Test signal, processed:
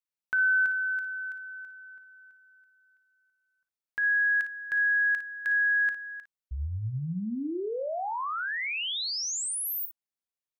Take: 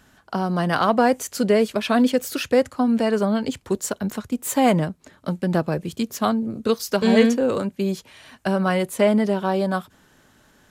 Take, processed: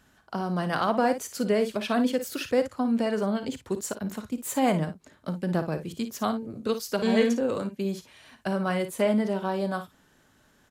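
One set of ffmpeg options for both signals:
-af "aecho=1:1:38|56:0.141|0.282,volume=0.473"

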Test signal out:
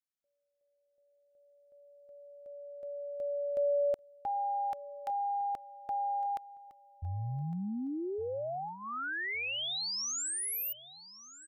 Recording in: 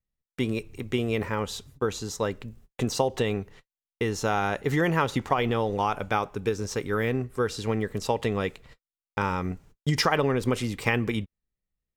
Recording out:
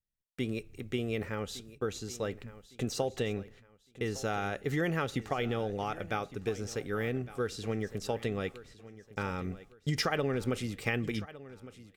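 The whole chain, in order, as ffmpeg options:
-filter_complex "[0:a]equalizer=f=980:w=6.3:g=-15,asplit=2[s0][s1];[s1]aecho=0:1:1159|2318|3477:0.141|0.0452|0.0145[s2];[s0][s2]amix=inputs=2:normalize=0,volume=0.473"

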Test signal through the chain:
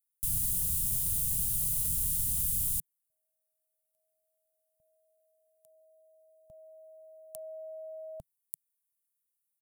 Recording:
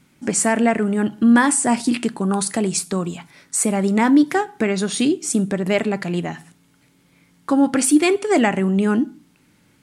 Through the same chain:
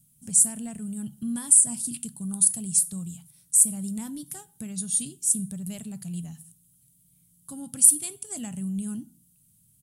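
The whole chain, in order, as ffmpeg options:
-af "firequalizer=gain_entry='entry(150,0);entry(330,-26);entry(650,-23);entry(2100,-26);entry(3000,-12);entry(4900,-9);entry(9500,13)':delay=0.05:min_phase=1,volume=0.562"

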